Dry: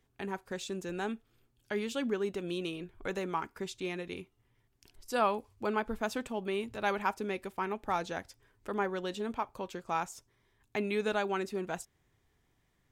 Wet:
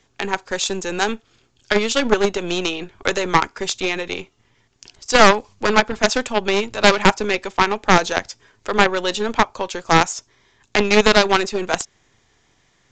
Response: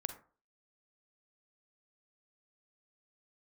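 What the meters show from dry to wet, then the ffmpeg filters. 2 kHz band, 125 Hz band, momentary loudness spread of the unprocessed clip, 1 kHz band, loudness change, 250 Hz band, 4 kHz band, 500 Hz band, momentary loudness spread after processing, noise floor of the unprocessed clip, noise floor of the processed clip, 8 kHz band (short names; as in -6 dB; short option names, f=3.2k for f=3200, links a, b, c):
+19.5 dB, +16.0 dB, 10 LU, +16.0 dB, +17.0 dB, +14.0 dB, +23.0 dB, +15.5 dB, 11 LU, -74 dBFS, -62 dBFS, +22.0 dB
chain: -filter_complex "[0:a]highpass=49,highshelf=f=4.4k:g=9.5,aeval=exprs='0.15*(cos(1*acos(clip(val(0)/0.15,-1,1)))-cos(1*PI/2))+0.075*(cos(2*acos(clip(val(0)/0.15,-1,1)))-cos(2*PI/2))+0.0335*(cos(3*acos(clip(val(0)/0.15,-1,1)))-cos(3*PI/2))+0.0106*(cos(6*acos(clip(val(0)/0.15,-1,1)))-cos(6*PI/2))+0.0133*(cos(8*acos(clip(val(0)/0.15,-1,1)))-cos(8*PI/2))':c=same,acrossover=split=400|2800[a][b][c];[a]aeval=exprs='max(val(0),0)':c=same[d];[d][b][c]amix=inputs=3:normalize=0,apsyclip=28dB,aresample=16000,aresample=44100,volume=-3.5dB"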